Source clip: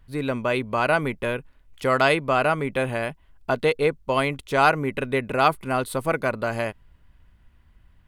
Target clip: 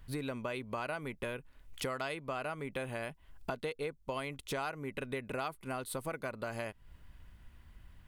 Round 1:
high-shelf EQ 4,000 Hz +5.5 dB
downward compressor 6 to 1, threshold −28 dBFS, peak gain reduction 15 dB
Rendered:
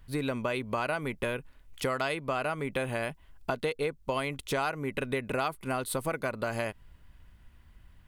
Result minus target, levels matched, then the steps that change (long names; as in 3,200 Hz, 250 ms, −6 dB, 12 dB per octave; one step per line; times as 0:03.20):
downward compressor: peak gain reduction −7 dB
change: downward compressor 6 to 1, threshold −36.5 dBFS, peak gain reduction 22 dB